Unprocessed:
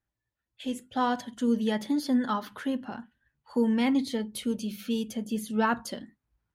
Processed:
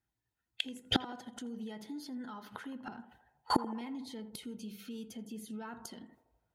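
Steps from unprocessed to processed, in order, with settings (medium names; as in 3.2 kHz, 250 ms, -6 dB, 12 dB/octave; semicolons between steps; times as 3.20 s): gate with hold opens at -42 dBFS; in parallel at +3 dB: compression, threshold -34 dBFS, peak gain reduction 13.5 dB; on the sum: peak limiter -22 dBFS, peak gain reduction 10 dB; comb of notches 570 Hz; inverted gate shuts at -29 dBFS, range -28 dB; on a send: band-passed feedback delay 82 ms, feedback 67%, band-pass 680 Hz, level -12 dB; on the sum: trim +14 dB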